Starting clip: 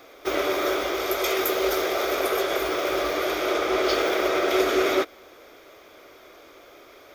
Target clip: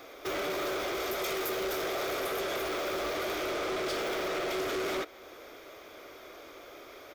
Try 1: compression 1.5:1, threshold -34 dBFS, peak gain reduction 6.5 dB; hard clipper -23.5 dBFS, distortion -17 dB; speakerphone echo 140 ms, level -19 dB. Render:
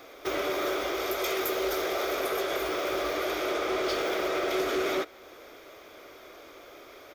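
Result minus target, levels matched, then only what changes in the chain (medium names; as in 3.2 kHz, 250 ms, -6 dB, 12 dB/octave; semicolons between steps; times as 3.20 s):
hard clipper: distortion -9 dB
change: hard clipper -30.5 dBFS, distortion -8 dB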